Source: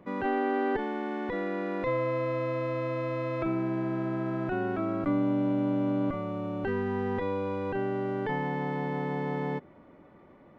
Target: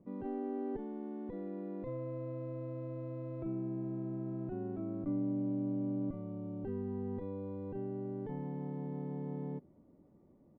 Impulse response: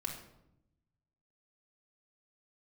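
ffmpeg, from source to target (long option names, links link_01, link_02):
-af "firequalizer=gain_entry='entry(220,0);entry(510,-7);entry(1500,-22)':delay=0.05:min_phase=1,volume=-6dB"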